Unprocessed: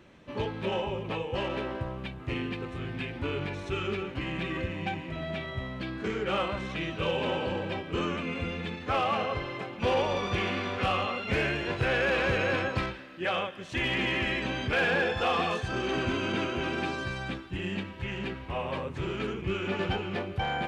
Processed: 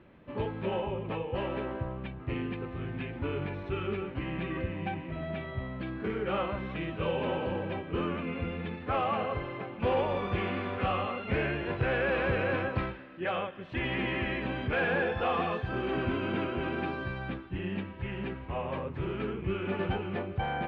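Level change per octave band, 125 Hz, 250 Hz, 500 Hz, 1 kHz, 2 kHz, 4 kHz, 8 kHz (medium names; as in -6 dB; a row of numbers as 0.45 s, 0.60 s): 0.0 dB, -0.5 dB, -1.0 dB, -2.0 dB, -4.0 dB, -8.5 dB, under -25 dB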